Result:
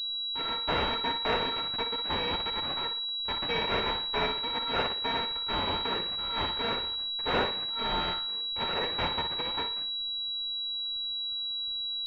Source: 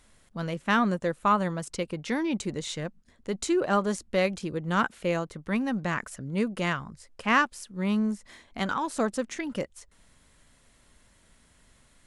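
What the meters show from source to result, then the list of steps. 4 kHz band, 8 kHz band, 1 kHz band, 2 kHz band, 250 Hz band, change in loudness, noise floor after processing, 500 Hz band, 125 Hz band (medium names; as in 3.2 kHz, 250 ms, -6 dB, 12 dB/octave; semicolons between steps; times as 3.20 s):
+14.5 dB, under -20 dB, -2.0 dB, -3.5 dB, -12.5 dB, -0.5 dB, -34 dBFS, -5.0 dB, -8.5 dB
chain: bit-reversed sample order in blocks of 256 samples; flutter echo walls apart 10 m, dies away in 0.44 s; class-D stage that switches slowly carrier 3.9 kHz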